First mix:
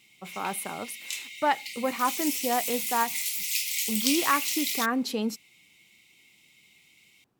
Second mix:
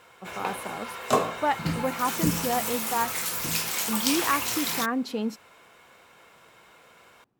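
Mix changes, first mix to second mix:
speech: add treble shelf 3.6 kHz -9.5 dB; background: remove brick-wall FIR high-pass 1.9 kHz

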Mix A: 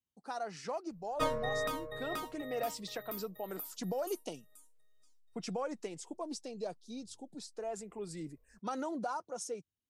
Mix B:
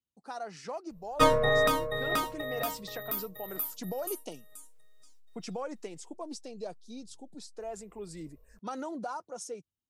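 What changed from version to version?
background +10.5 dB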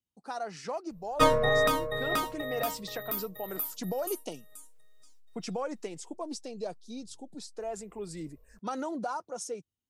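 speech +3.0 dB

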